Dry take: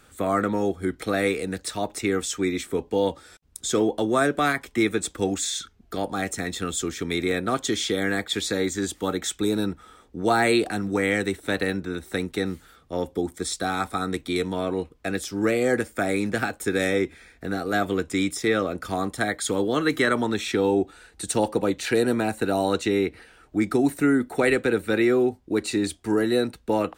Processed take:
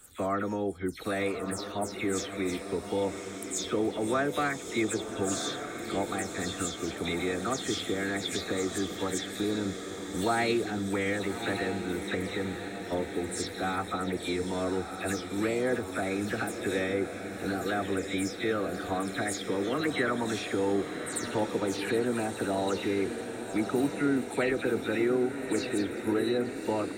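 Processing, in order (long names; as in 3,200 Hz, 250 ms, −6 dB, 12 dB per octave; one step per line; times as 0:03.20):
every frequency bin delayed by itself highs early, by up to 131 ms
camcorder AGC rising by 8.5 dB per second
feedback delay with all-pass diffusion 1,161 ms, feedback 60%, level −8 dB
level −7 dB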